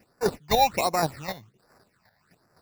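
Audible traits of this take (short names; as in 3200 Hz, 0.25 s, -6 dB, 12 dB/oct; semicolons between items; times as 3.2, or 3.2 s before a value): aliases and images of a low sample rate 3200 Hz, jitter 0%; chopped level 3.9 Hz, depth 60%, duty 15%; phasing stages 8, 1.3 Hz, lowest notch 340–3300 Hz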